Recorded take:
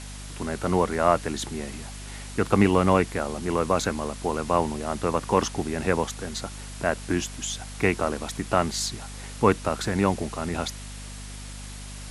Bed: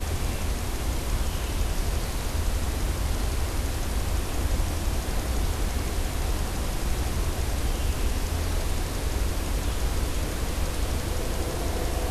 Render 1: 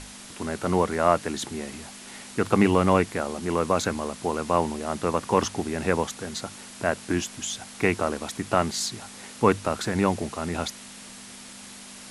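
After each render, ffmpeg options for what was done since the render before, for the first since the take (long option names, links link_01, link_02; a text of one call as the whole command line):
ffmpeg -i in.wav -af "bandreject=frequency=50:width_type=h:width=6,bandreject=frequency=100:width_type=h:width=6,bandreject=frequency=150:width_type=h:width=6" out.wav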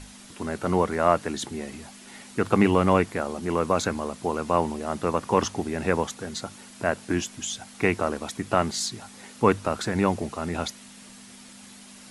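ffmpeg -i in.wav -af "afftdn=noise_reduction=6:noise_floor=-44" out.wav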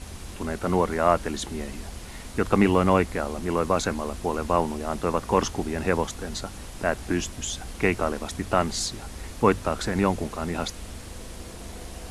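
ffmpeg -i in.wav -i bed.wav -filter_complex "[1:a]volume=-12dB[link_01];[0:a][link_01]amix=inputs=2:normalize=0" out.wav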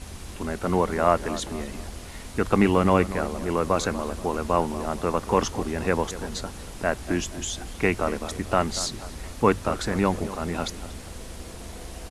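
ffmpeg -i in.wav -filter_complex "[0:a]asplit=2[link_01][link_02];[link_02]adelay=237,lowpass=frequency=2000:poles=1,volume=-14dB,asplit=2[link_03][link_04];[link_04]adelay=237,lowpass=frequency=2000:poles=1,volume=0.46,asplit=2[link_05][link_06];[link_06]adelay=237,lowpass=frequency=2000:poles=1,volume=0.46,asplit=2[link_07][link_08];[link_08]adelay=237,lowpass=frequency=2000:poles=1,volume=0.46[link_09];[link_01][link_03][link_05][link_07][link_09]amix=inputs=5:normalize=0" out.wav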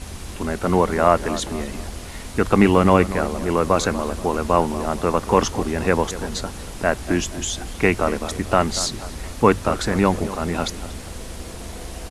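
ffmpeg -i in.wav -af "volume=5dB,alimiter=limit=-1dB:level=0:latency=1" out.wav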